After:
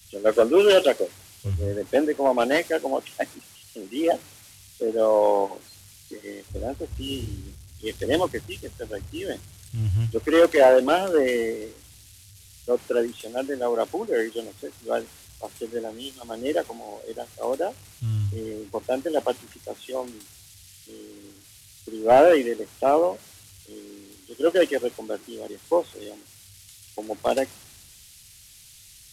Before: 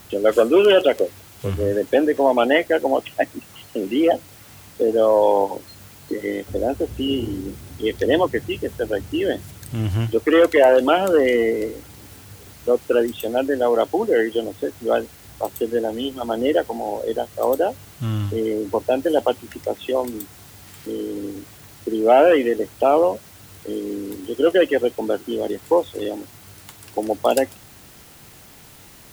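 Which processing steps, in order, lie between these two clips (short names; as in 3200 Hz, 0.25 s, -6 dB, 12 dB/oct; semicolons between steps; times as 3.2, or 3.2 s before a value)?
delta modulation 64 kbps, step -31 dBFS; three-band expander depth 100%; gain -6.5 dB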